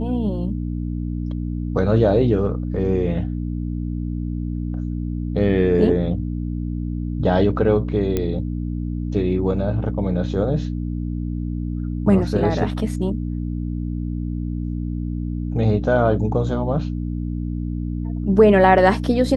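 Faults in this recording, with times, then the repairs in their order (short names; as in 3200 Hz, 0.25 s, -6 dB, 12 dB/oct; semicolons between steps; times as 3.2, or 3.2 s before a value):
hum 60 Hz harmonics 5 -25 dBFS
8.17 pop -9 dBFS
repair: de-click; de-hum 60 Hz, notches 5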